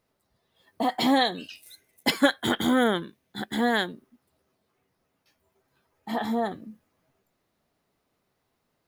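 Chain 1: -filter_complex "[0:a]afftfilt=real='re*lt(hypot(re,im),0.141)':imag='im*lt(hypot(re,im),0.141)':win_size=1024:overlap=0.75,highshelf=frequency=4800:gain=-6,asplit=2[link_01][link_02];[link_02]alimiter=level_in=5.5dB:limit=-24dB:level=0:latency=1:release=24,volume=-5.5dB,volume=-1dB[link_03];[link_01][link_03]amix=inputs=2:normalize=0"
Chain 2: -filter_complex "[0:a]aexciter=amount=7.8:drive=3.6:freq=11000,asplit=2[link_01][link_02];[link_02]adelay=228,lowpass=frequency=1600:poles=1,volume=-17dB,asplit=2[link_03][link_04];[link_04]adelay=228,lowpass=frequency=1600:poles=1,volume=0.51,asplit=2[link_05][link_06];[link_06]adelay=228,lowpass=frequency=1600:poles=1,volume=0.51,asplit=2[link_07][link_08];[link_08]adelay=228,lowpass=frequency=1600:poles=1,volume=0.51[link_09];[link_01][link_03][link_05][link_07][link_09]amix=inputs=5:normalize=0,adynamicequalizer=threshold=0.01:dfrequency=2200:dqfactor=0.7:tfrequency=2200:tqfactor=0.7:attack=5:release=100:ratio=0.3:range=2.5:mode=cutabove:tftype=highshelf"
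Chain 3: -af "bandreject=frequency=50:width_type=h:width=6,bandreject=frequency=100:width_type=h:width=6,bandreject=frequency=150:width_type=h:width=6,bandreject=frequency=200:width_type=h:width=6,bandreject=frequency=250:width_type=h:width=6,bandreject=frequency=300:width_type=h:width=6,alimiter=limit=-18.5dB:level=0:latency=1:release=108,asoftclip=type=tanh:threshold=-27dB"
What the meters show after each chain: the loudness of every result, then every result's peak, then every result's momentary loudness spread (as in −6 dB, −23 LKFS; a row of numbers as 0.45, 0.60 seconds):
−32.5, −26.0, −34.5 LKFS; −17.0, −6.5, −27.0 dBFS; 14, 16, 15 LU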